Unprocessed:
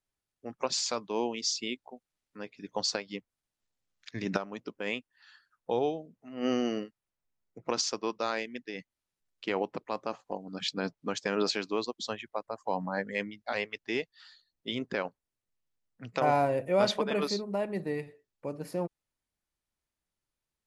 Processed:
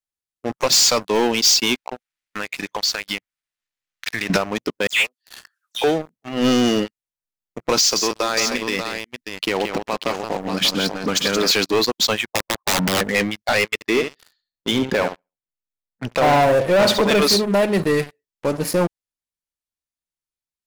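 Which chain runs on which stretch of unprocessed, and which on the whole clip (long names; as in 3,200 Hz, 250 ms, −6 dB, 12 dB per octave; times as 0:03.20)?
0:01.75–0:04.30: parametric band 1,900 Hz +12 dB 2 octaves + downward compressor 8 to 1, threshold −39 dBFS
0:04.87–0:05.84: high-pass filter 1,000 Hz + all-pass dispersion lows, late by 133 ms, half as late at 2,900 Hz + one half of a high-frequency compander encoder only
0:07.78–0:11.51: downward compressor 2.5 to 1, threshold −34 dBFS + multi-tap delay 126/175/588 ms −19.5/−9/−8.5 dB
0:12.26–0:13.01: low-pass filter 1,100 Hz 24 dB per octave + wrap-around overflow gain 30 dB
0:13.74–0:17.09: high-shelf EQ 2,400 Hz −9.5 dB + flutter between parallel walls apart 11.8 metres, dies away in 0.34 s
whole clip: high-shelf EQ 2,400 Hz +8.5 dB; leveller curve on the samples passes 5; level −1.5 dB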